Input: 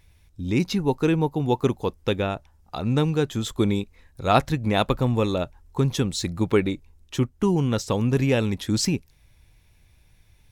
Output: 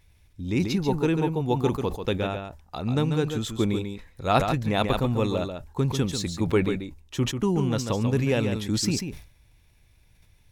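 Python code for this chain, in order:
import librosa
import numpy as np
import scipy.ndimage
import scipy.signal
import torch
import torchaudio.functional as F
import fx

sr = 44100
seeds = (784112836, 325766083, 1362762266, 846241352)

p1 = x + fx.echo_single(x, sr, ms=141, db=-7.0, dry=0)
p2 = fx.sustainer(p1, sr, db_per_s=110.0)
y = F.gain(torch.from_numpy(p2), -3.0).numpy()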